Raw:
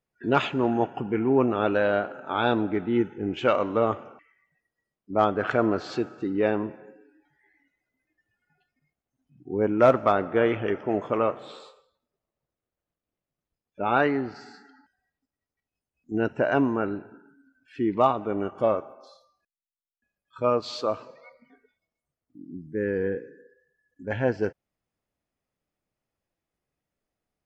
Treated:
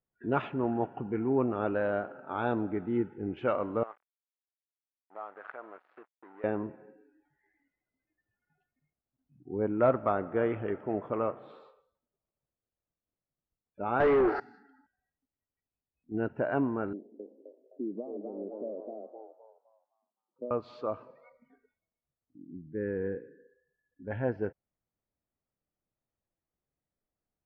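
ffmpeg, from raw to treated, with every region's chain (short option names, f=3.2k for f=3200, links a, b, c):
-filter_complex "[0:a]asettb=1/sr,asplit=3[a][b][c];[a]atrim=end=3.834[d];[b]atrim=start=3.83:end=6.44,asetpts=PTS-STARTPTS,afade=t=in:d=0.004:c=qsin,afade=t=out:st=2.606:d=0.004:c=qsin,aeval=exprs='sgn(val(0))*max(abs(val(0))-0.0178,0)':c=same,acompressor=threshold=-28dB:ratio=2.5:attack=3.2:release=140:knee=1:detection=peak,highpass=790,lowpass=2.2k[e];[c]atrim=start=6.436[f];[d][e]acrossfade=d=0.004:c1=hsin:c2=qsin[g];[g][f]acrossfade=d=0.004:c1=qsin:c2=hsin,asettb=1/sr,asplit=3[h][i][j];[h]atrim=end=14.004[k];[i]atrim=start=14:end=14.4,asetpts=PTS-STARTPTS,afade=t=in:d=0.004:c=qsin,afade=t=out:st=0.396:d=0.004:c=qsin,lowshelf=f=270:t=q:w=3:g=-9,acompressor=threshold=-26dB:ratio=1.5:attack=3.2:release=140:knee=1:detection=peak,asplit=2[l][m];[m]highpass=f=720:p=1,volume=31dB,asoftclip=type=tanh:threshold=-9.5dB[n];[l][n]amix=inputs=2:normalize=0,lowpass=f=1.8k:p=1,volume=-6dB[o];[j]atrim=start=14.396[p];[k][o]acrossfade=d=0.004:c1=hsin:c2=qsin[q];[q][p]acrossfade=d=0.004:c1=qsin:c2=hsin,asettb=1/sr,asplit=3[r][s][t];[r]atrim=end=16.934[u];[s]atrim=start=16.93:end=20.51,asetpts=PTS-STARTPTS,afade=t=in:d=0.004:c=qsin,afade=t=out:st=3.576:d=0.004:c=qsin,asplit=8[v][w][x][y][z][aa][ab][ac];[w]adelay=259,afreqshift=110,volume=-3.5dB[ad];[x]adelay=518,afreqshift=220,volume=-9.5dB[ae];[y]adelay=777,afreqshift=330,volume=-15.5dB[af];[z]adelay=1036,afreqshift=440,volume=-21.6dB[ag];[aa]adelay=1295,afreqshift=550,volume=-27.6dB[ah];[ab]adelay=1554,afreqshift=660,volume=-33.6dB[ai];[ac]adelay=1813,afreqshift=770,volume=-39.6dB[aj];[v][ad][ae][af][ag][ah][ai][aj]amix=inputs=8:normalize=0,atrim=end_sample=157878,acompressor=threshold=-24dB:ratio=6:attack=3.2:release=140:knee=1:detection=peak,asuperpass=centerf=350:order=8:qfactor=0.87[ak];[t]atrim=start=20.506[al];[u][ak]acrossfade=d=0.004:c1=hsin:c2=qsin[am];[am][al]acrossfade=d=0.004:c1=qsin:c2=hsin,lowpass=1.8k,lowshelf=f=170:g=3.5,volume=-7dB"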